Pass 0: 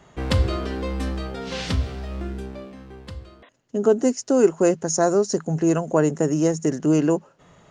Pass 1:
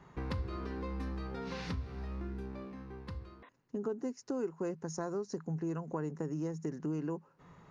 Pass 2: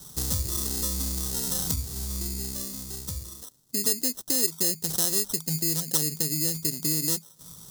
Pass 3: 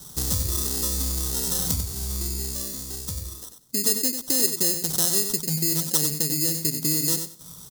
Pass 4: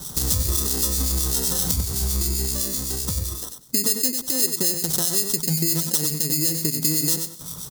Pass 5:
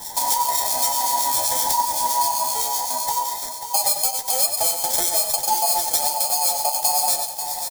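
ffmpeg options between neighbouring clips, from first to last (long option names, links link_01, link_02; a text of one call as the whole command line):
ffmpeg -i in.wav -af "equalizer=frequency=160:width_type=o:width=0.33:gain=4,equalizer=frequency=630:width_type=o:width=0.33:gain=-9,equalizer=frequency=1000:width_type=o:width=0.33:gain=5,equalizer=frequency=3150:width_type=o:width=0.33:gain=-8,equalizer=frequency=8000:width_type=o:width=0.33:gain=-12,acompressor=threshold=-32dB:ratio=3,highshelf=frequency=5400:gain=-9,volume=-5.5dB" out.wav
ffmpeg -i in.wav -af "acrusher=samples=19:mix=1:aa=0.000001,bass=frequency=250:gain=7,treble=frequency=4000:gain=7,aexciter=amount=7.9:drive=3.9:freq=3700" out.wav
ffmpeg -i in.wav -af "aecho=1:1:94|188|282:0.398|0.0717|0.0129,volume=2.5dB" out.wav
ffmpeg -i in.wav -filter_complex "[0:a]acompressor=threshold=-28dB:ratio=2.5,acrossover=split=2000[link_01][link_02];[link_01]aeval=exprs='val(0)*(1-0.5/2+0.5/2*cos(2*PI*7.8*n/s))':channel_layout=same[link_03];[link_02]aeval=exprs='val(0)*(1-0.5/2-0.5/2*cos(2*PI*7.8*n/s))':channel_layout=same[link_04];[link_03][link_04]amix=inputs=2:normalize=0,alimiter=level_in=11.5dB:limit=-1dB:release=50:level=0:latency=1,volume=-1dB" out.wav
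ffmpeg -i in.wav -filter_complex "[0:a]afftfilt=real='real(if(between(b,1,1008),(2*floor((b-1)/48)+1)*48-b,b),0)':imag='imag(if(between(b,1,1008),(2*floor((b-1)/48)+1)*48-b,b),0)*if(between(b,1,1008),-1,1)':win_size=2048:overlap=0.75,flanger=delay=8.4:depth=6.2:regen=35:speed=1.1:shape=sinusoidal,asplit=2[link_01][link_02];[link_02]aecho=0:1:539|1078|1617|2156|2695:0.355|0.153|0.0656|0.0282|0.0121[link_03];[link_01][link_03]amix=inputs=2:normalize=0,volume=5dB" out.wav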